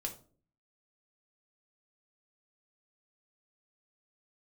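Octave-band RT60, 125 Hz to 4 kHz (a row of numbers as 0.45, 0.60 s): 0.70, 0.65, 0.50, 0.35, 0.25, 0.25 s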